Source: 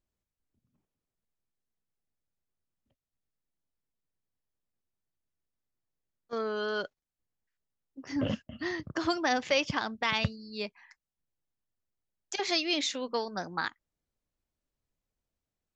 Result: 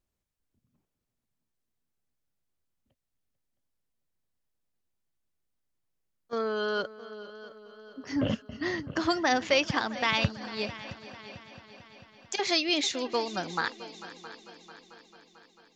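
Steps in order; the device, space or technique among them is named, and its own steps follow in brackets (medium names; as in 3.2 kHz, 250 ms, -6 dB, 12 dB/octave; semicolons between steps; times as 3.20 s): multi-head tape echo (multi-head delay 222 ms, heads second and third, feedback 54%, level -17 dB; wow and flutter 21 cents); trim +2.5 dB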